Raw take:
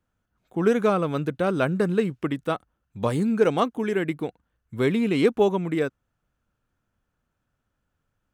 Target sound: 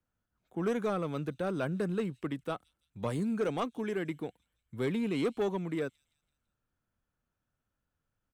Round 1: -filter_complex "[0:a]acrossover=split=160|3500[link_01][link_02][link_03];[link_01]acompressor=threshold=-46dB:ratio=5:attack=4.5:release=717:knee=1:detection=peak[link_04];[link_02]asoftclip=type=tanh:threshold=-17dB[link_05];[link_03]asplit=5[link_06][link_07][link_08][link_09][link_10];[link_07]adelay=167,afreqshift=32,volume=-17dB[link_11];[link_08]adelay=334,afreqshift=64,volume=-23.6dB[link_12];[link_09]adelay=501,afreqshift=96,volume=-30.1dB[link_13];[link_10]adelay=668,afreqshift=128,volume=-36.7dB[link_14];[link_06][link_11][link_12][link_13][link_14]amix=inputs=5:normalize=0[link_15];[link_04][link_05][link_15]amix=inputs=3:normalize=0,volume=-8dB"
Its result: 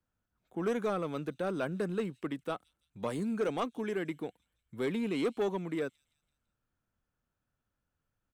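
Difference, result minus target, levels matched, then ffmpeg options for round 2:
downward compressor: peak gain reduction +15 dB
-filter_complex "[0:a]acrossover=split=160|3500[link_01][link_02][link_03];[link_02]asoftclip=type=tanh:threshold=-17dB[link_04];[link_03]asplit=5[link_05][link_06][link_07][link_08][link_09];[link_06]adelay=167,afreqshift=32,volume=-17dB[link_10];[link_07]adelay=334,afreqshift=64,volume=-23.6dB[link_11];[link_08]adelay=501,afreqshift=96,volume=-30.1dB[link_12];[link_09]adelay=668,afreqshift=128,volume=-36.7dB[link_13];[link_05][link_10][link_11][link_12][link_13]amix=inputs=5:normalize=0[link_14];[link_01][link_04][link_14]amix=inputs=3:normalize=0,volume=-8dB"

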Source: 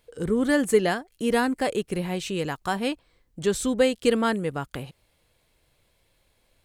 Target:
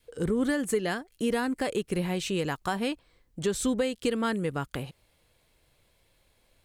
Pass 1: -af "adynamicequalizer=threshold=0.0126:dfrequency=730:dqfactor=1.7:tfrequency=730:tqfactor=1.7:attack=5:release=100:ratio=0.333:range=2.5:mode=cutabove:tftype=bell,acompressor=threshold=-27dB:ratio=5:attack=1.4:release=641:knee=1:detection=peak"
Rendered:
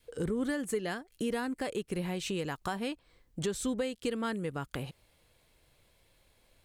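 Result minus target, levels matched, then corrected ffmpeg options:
downward compressor: peak gain reduction +5.5 dB
-af "adynamicequalizer=threshold=0.0126:dfrequency=730:dqfactor=1.7:tfrequency=730:tqfactor=1.7:attack=5:release=100:ratio=0.333:range=2.5:mode=cutabove:tftype=bell,acompressor=threshold=-20dB:ratio=5:attack=1.4:release=641:knee=1:detection=peak"

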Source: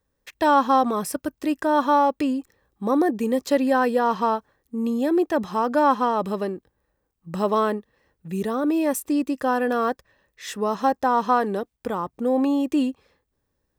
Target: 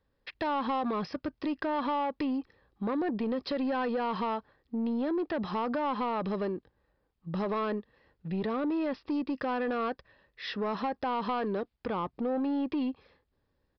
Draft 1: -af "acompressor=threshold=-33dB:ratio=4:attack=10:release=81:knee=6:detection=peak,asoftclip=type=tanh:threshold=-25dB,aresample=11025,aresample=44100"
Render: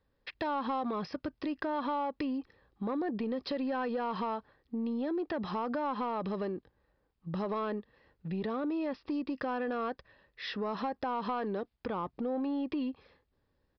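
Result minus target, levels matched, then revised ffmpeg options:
downward compressor: peak gain reduction +4.5 dB
-af "acompressor=threshold=-27dB:ratio=4:attack=10:release=81:knee=6:detection=peak,asoftclip=type=tanh:threshold=-25dB,aresample=11025,aresample=44100"

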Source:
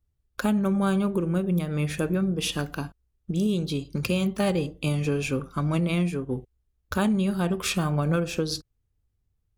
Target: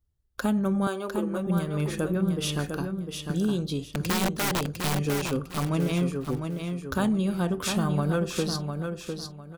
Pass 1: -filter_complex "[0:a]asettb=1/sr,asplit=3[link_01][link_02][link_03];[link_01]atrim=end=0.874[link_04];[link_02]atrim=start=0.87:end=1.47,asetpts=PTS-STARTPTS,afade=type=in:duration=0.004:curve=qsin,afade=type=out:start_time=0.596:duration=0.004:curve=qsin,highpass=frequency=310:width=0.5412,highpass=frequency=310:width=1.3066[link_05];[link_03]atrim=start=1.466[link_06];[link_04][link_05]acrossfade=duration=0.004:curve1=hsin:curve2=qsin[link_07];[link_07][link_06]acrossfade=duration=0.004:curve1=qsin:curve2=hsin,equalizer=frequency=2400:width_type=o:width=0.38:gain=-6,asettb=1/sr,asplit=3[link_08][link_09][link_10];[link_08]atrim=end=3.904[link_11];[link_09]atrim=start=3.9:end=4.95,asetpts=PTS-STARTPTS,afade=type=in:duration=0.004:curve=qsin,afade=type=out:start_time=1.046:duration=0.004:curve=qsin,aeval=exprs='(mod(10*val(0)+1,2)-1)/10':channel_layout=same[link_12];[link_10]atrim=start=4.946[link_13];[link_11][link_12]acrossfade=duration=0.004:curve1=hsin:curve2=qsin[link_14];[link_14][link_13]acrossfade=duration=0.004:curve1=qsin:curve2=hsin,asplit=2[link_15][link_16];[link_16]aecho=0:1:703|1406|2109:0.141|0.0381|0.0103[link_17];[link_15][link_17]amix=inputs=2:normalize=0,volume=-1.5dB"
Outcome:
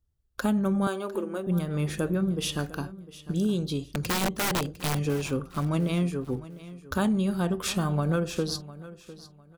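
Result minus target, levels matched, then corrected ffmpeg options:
echo-to-direct −11 dB
-filter_complex "[0:a]asettb=1/sr,asplit=3[link_01][link_02][link_03];[link_01]atrim=end=0.874[link_04];[link_02]atrim=start=0.87:end=1.47,asetpts=PTS-STARTPTS,afade=type=in:duration=0.004:curve=qsin,afade=type=out:start_time=0.596:duration=0.004:curve=qsin,highpass=frequency=310:width=0.5412,highpass=frequency=310:width=1.3066[link_05];[link_03]atrim=start=1.466[link_06];[link_04][link_05]acrossfade=duration=0.004:curve1=hsin:curve2=qsin[link_07];[link_07][link_06]acrossfade=duration=0.004:curve1=qsin:curve2=hsin,equalizer=frequency=2400:width_type=o:width=0.38:gain=-6,asettb=1/sr,asplit=3[link_08][link_09][link_10];[link_08]atrim=end=3.904[link_11];[link_09]atrim=start=3.9:end=4.95,asetpts=PTS-STARTPTS,afade=type=in:duration=0.004:curve=qsin,afade=type=out:start_time=1.046:duration=0.004:curve=qsin,aeval=exprs='(mod(10*val(0)+1,2)-1)/10':channel_layout=same[link_12];[link_10]atrim=start=4.946[link_13];[link_11][link_12]acrossfade=duration=0.004:curve1=hsin:curve2=qsin[link_14];[link_14][link_13]acrossfade=duration=0.004:curve1=qsin:curve2=hsin,asplit=2[link_15][link_16];[link_16]aecho=0:1:703|1406|2109:0.501|0.135|0.0365[link_17];[link_15][link_17]amix=inputs=2:normalize=0,volume=-1.5dB"

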